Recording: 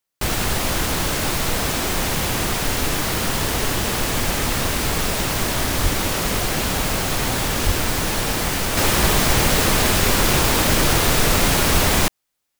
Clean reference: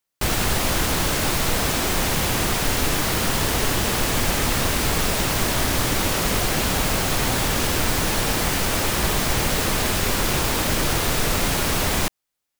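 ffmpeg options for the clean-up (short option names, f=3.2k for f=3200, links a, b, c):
-filter_complex "[0:a]asplit=3[a][b][c];[a]afade=t=out:st=5.82:d=0.02[d];[b]highpass=f=140:w=0.5412,highpass=f=140:w=1.3066,afade=t=in:st=5.82:d=0.02,afade=t=out:st=5.94:d=0.02[e];[c]afade=t=in:st=5.94:d=0.02[f];[d][e][f]amix=inputs=3:normalize=0,asplit=3[g][h][i];[g]afade=t=out:st=7.65:d=0.02[j];[h]highpass=f=140:w=0.5412,highpass=f=140:w=1.3066,afade=t=in:st=7.65:d=0.02,afade=t=out:st=7.77:d=0.02[k];[i]afade=t=in:st=7.77:d=0.02[l];[j][k][l]amix=inputs=3:normalize=0,asplit=3[m][n][o];[m]afade=t=out:st=11.73:d=0.02[p];[n]highpass=f=140:w=0.5412,highpass=f=140:w=1.3066,afade=t=in:st=11.73:d=0.02,afade=t=out:st=11.85:d=0.02[q];[o]afade=t=in:st=11.85:d=0.02[r];[p][q][r]amix=inputs=3:normalize=0,asetnsamples=n=441:p=0,asendcmd='8.77 volume volume -4.5dB',volume=0dB"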